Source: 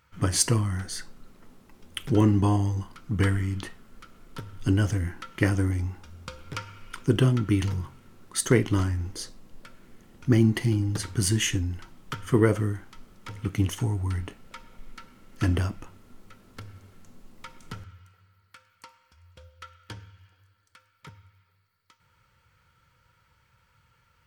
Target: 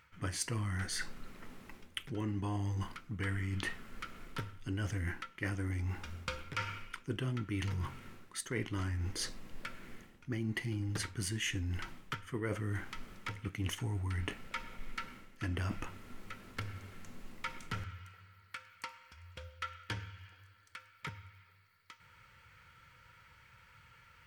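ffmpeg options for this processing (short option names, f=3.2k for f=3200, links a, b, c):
-af "equalizer=f=2.1k:w=1.1:g=8,areverse,acompressor=threshold=-35dB:ratio=8,areverse,volume=1dB"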